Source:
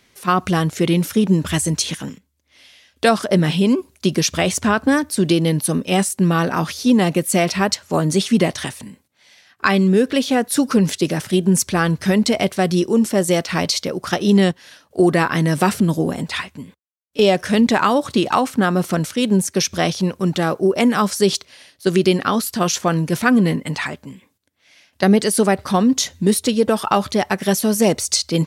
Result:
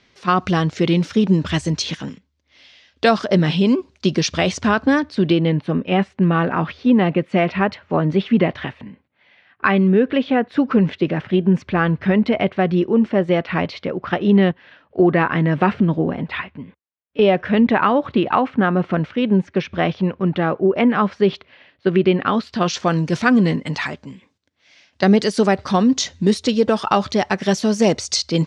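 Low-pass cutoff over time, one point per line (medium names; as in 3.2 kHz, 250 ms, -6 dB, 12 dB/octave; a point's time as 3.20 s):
low-pass 24 dB/octave
4.80 s 5.4 kHz
5.57 s 2.8 kHz
22.16 s 2.8 kHz
22.93 s 6.2 kHz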